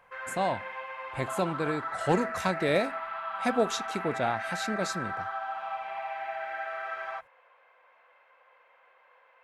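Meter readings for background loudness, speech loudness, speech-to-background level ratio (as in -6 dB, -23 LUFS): -35.5 LUFS, -31.0 LUFS, 4.5 dB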